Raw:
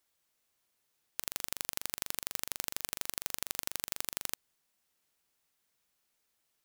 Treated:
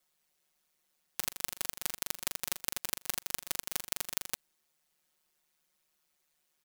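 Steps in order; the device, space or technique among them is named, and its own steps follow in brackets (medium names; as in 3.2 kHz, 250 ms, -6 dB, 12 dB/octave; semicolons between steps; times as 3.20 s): ring-modulated robot voice (ring modulator 75 Hz; comb 5.5 ms, depth 92%); trim +1.5 dB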